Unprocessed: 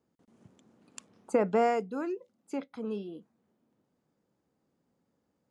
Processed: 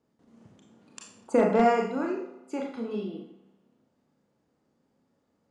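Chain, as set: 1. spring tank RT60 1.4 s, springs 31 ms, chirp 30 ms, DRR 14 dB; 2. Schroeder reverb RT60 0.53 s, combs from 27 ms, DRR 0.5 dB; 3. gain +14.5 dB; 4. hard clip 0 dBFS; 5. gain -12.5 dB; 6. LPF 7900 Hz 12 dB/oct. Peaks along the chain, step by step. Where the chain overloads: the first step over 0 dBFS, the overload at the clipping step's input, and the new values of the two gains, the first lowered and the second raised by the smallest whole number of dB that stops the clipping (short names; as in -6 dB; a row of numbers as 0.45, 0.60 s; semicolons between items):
-14.0, -10.5, +4.0, 0.0, -12.5, -12.5 dBFS; step 3, 4.0 dB; step 3 +10.5 dB, step 5 -8.5 dB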